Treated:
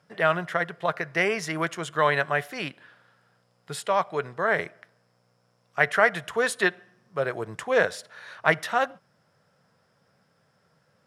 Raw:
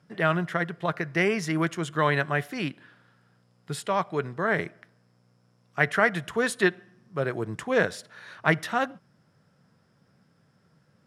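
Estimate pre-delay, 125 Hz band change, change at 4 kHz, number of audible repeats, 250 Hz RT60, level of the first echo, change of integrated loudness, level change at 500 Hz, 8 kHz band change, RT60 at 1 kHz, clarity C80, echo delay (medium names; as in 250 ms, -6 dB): no reverb, -6.0 dB, +1.5 dB, no echo, no reverb, no echo, +1.0 dB, +1.5 dB, +1.5 dB, no reverb, no reverb, no echo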